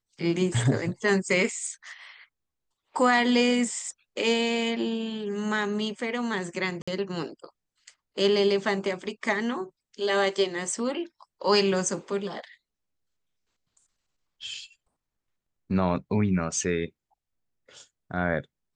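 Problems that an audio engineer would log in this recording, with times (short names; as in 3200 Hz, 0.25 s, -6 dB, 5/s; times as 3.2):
6.82–6.88 gap 55 ms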